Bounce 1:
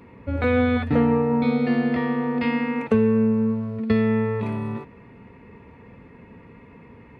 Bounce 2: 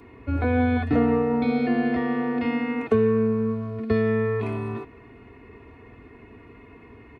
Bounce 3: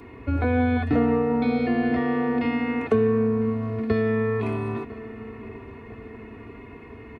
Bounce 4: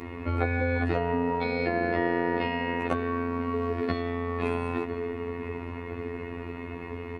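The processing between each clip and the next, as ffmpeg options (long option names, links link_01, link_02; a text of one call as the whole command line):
ffmpeg -i in.wav -filter_complex "[0:a]aecho=1:1:2.8:0.72,acrossover=split=210|1200[link_01][link_02][link_03];[link_03]alimiter=level_in=6dB:limit=-24dB:level=0:latency=1:release=53,volume=-6dB[link_04];[link_01][link_02][link_04]amix=inputs=3:normalize=0,volume=-1dB" out.wav
ffmpeg -i in.wav -filter_complex "[0:a]asplit=2[link_01][link_02];[link_02]acompressor=threshold=-29dB:ratio=6,volume=2dB[link_03];[link_01][link_03]amix=inputs=2:normalize=0,asplit=2[link_04][link_05];[link_05]adelay=1001,lowpass=frequency=2000:poles=1,volume=-16dB,asplit=2[link_06][link_07];[link_07]adelay=1001,lowpass=frequency=2000:poles=1,volume=0.53,asplit=2[link_08][link_09];[link_09]adelay=1001,lowpass=frequency=2000:poles=1,volume=0.53,asplit=2[link_10][link_11];[link_11]adelay=1001,lowpass=frequency=2000:poles=1,volume=0.53,asplit=2[link_12][link_13];[link_13]adelay=1001,lowpass=frequency=2000:poles=1,volume=0.53[link_14];[link_04][link_06][link_08][link_10][link_12][link_14]amix=inputs=6:normalize=0,volume=-3dB" out.wav
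ffmpeg -i in.wav -filter_complex "[0:a]acrossover=split=160|740[link_01][link_02][link_03];[link_01]acompressor=threshold=-42dB:ratio=4[link_04];[link_02]acompressor=threshold=-24dB:ratio=4[link_05];[link_03]acompressor=threshold=-36dB:ratio=4[link_06];[link_04][link_05][link_06]amix=inputs=3:normalize=0,afftfilt=real='hypot(re,im)*cos(PI*b)':imag='0':win_size=2048:overlap=0.75,afftfilt=real='re*lt(hypot(re,im),0.224)':imag='im*lt(hypot(re,im),0.224)':win_size=1024:overlap=0.75,volume=8.5dB" out.wav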